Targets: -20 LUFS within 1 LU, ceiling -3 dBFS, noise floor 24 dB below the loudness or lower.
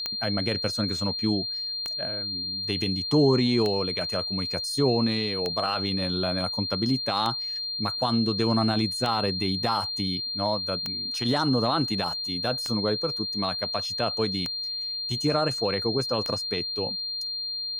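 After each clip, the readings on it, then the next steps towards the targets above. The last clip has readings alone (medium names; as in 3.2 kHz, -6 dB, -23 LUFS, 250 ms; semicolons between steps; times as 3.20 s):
clicks found 10; steady tone 4.2 kHz; tone level -29 dBFS; loudness -26.0 LUFS; peak level -9.0 dBFS; loudness target -20.0 LUFS
-> de-click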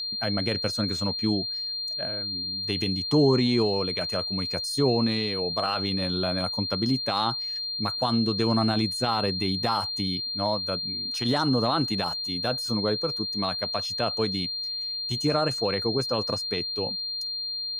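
clicks found 0; steady tone 4.2 kHz; tone level -29 dBFS
-> band-stop 4.2 kHz, Q 30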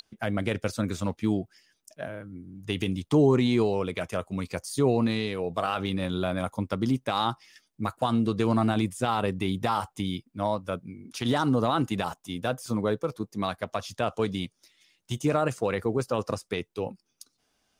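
steady tone not found; loudness -28.5 LUFS; peak level -10.0 dBFS; loudness target -20.0 LUFS
-> trim +8.5 dB; peak limiter -3 dBFS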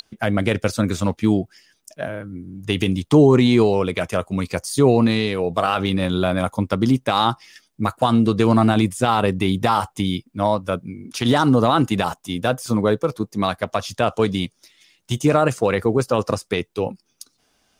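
loudness -20.0 LUFS; peak level -3.0 dBFS; noise floor -67 dBFS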